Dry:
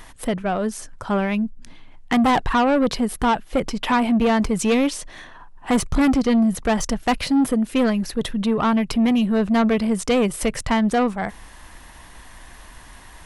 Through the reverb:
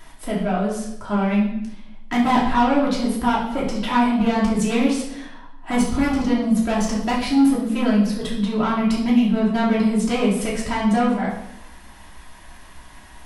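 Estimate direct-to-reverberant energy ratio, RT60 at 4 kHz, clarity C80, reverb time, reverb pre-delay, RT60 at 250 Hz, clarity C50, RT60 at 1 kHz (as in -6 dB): -6.0 dB, 0.75 s, 7.5 dB, 0.80 s, 3 ms, 0.95 s, 4.0 dB, 0.75 s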